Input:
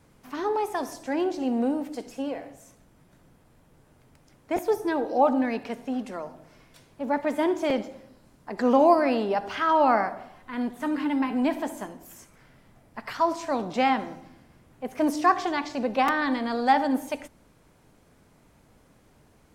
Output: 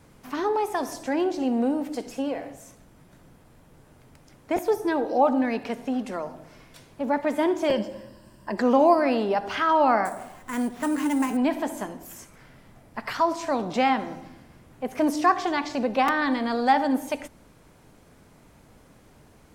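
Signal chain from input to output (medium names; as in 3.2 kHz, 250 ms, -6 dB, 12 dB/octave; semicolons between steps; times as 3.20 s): 7.68–8.58 s: rippled EQ curve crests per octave 1.3, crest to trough 11 dB; in parallel at -0.5 dB: compression, threshold -32 dBFS, peak gain reduction 17.5 dB; 10.05–11.37 s: on the sum: sample-rate reducer 9.1 kHz, jitter 0%; trim -1 dB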